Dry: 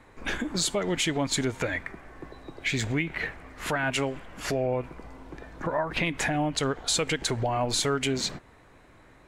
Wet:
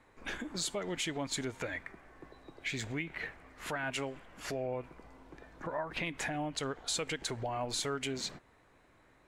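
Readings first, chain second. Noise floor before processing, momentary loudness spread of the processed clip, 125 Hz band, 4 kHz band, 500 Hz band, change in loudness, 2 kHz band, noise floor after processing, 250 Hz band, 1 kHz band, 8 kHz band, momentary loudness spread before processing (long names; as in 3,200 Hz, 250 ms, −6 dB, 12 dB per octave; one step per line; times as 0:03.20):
−55 dBFS, 19 LU, −11.5 dB, −8.5 dB, −9.0 dB, −9.0 dB, −8.5 dB, −65 dBFS, −10.0 dB, −8.5 dB, −8.5 dB, 18 LU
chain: low-shelf EQ 220 Hz −4 dB
level −8.5 dB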